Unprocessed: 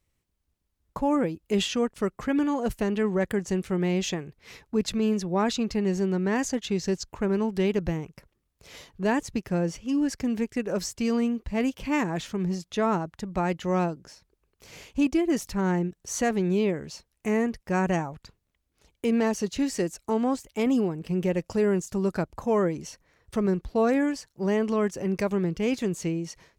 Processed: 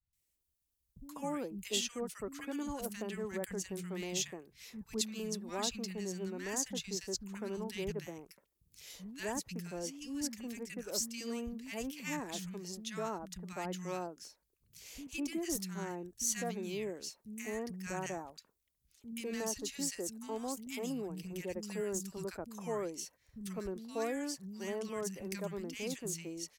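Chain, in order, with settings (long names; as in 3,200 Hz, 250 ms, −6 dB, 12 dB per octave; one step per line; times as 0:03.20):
first-order pre-emphasis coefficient 0.8
three-band delay without the direct sound lows, highs, mids 130/200 ms, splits 210/1,400 Hz
level +1 dB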